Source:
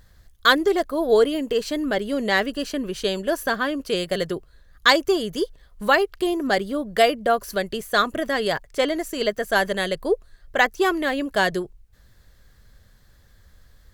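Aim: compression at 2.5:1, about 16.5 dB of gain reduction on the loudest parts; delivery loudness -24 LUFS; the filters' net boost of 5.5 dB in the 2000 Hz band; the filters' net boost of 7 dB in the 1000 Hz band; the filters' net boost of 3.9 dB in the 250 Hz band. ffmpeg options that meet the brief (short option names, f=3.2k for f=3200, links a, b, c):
-af "equalizer=f=250:t=o:g=4.5,equalizer=f=1k:t=o:g=8.5,equalizer=f=2k:t=o:g=3.5,acompressor=threshold=-32dB:ratio=2.5,volume=6.5dB"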